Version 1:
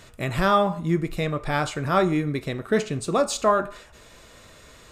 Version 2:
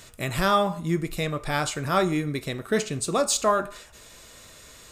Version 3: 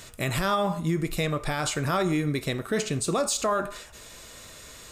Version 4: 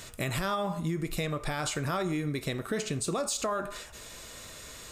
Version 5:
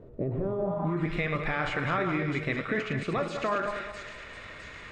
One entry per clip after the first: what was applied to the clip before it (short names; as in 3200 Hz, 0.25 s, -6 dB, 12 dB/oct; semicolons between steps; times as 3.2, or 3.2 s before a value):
high shelf 4100 Hz +11 dB; gain -2.5 dB
limiter -19.5 dBFS, peak gain reduction 9 dB; gain +2.5 dB
compressor 2.5:1, threshold -30 dBFS, peak gain reduction 6.5 dB
regenerating reverse delay 0.106 s, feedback 58%, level -6 dB; thin delay 0.658 s, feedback 52%, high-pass 3900 Hz, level -4 dB; low-pass sweep 440 Hz -> 2100 Hz, 0.6–1.12